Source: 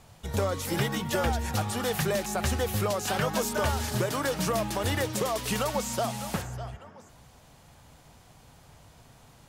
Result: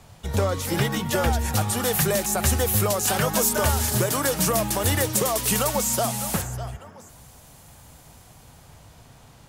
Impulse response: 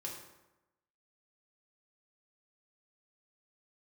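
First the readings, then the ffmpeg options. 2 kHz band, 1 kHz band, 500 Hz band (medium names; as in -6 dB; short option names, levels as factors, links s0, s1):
+4.0 dB, +4.0 dB, +4.0 dB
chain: -filter_complex "[0:a]equalizer=f=78:w=0.9:g=2.5,acrossover=split=150|7400[s0][s1][s2];[s2]dynaudnorm=f=340:g=9:m=3.55[s3];[s0][s1][s3]amix=inputs=3:normalize=0,volume=1.58"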